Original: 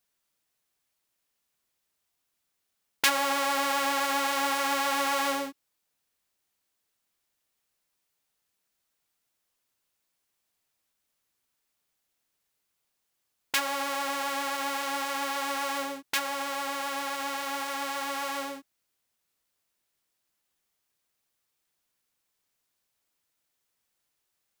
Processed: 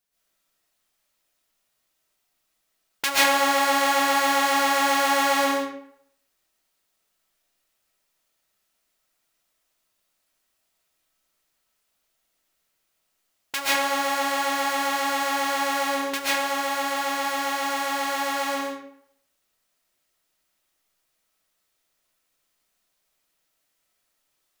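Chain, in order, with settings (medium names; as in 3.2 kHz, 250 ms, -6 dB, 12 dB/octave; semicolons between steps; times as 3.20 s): reverberation RT60 0.65 s, pre-delay 95 ms, DRR -8.5 dB; trim -2.5 dB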